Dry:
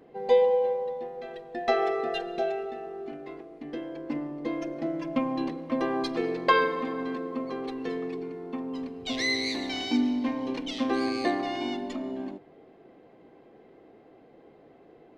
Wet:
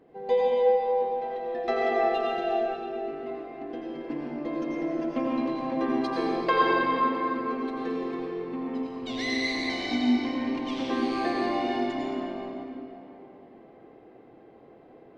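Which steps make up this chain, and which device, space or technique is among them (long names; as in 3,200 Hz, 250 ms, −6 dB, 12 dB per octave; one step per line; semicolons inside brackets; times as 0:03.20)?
swimming-pool hall (convolution reverb RT60 3.2 s, pre-delay 79 ms, DRR −5 dB; high-shelf EQ 4,000 Hz −6.5 dB)
level −3.5 dB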